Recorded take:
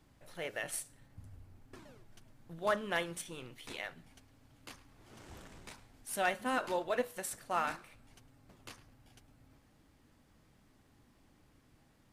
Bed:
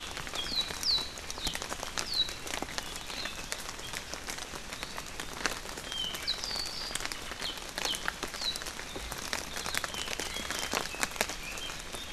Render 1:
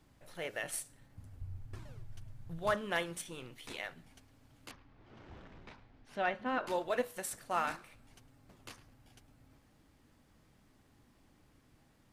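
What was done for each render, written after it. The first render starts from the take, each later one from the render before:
0:01.41–0:02.74: low shelf with overshoot 160 Hz +12 dB, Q 1.5
0:04.71–0:06.67: high-frequency loss of the air 240 metres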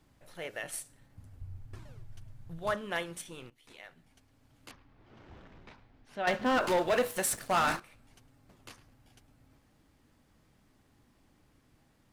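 0:03.50–0:04.73: fade in, from −16 dB
0:06.27–0:07.80: leveller curve on the samples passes 3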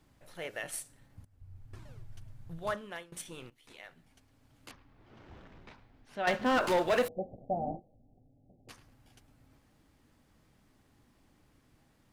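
0:01.25–0:01.92: fade in, from −18.5 dB
0:02.54–0:03.12: fade out, to −20.5 dB
0:07.08–0:08.69: Chebyshev low-pass with heavy ripple 790 Hz, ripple 3 dB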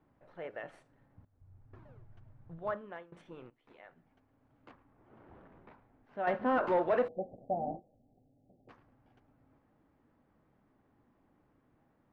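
low-pass filter 1,300 Hz 12 dB per octave
low-shelf EQ 120 Hz −11.5 dB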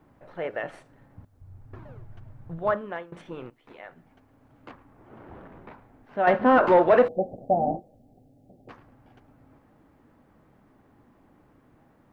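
level +11.5 dB

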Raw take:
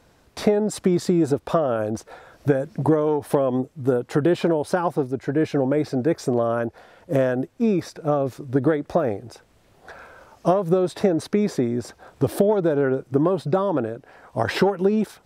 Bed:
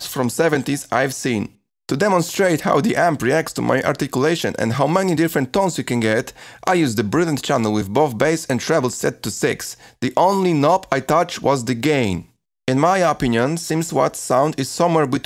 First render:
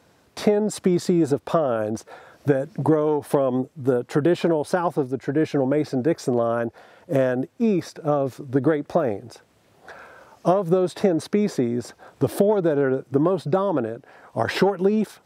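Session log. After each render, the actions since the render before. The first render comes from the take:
high-pass filter 100 Hz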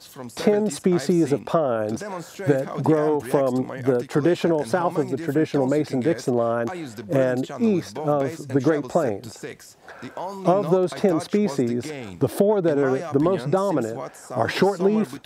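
mix in bed −16.5 dB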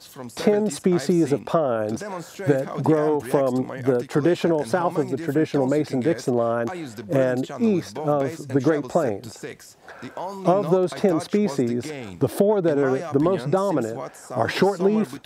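no processing that can be heard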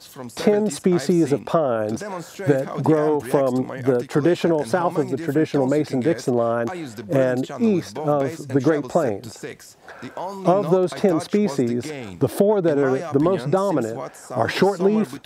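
level +1.5 dB

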